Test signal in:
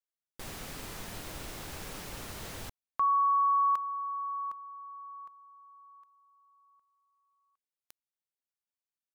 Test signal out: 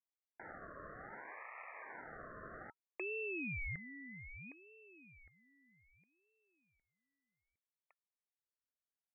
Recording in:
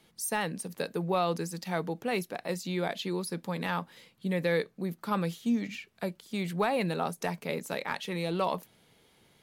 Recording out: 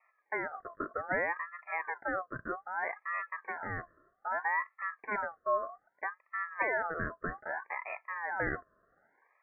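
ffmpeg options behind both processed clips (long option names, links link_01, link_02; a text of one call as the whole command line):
ffmpeg -i in.wav -af "asuperpass=centerf=430:order=20:qfactor=0.52,aeval=exprs='val(0)*sin(2*PI*1200*n/s+1200*0.3/0.63*sin(2*PI*0.63*n/s))':channel_layout=same" out.wav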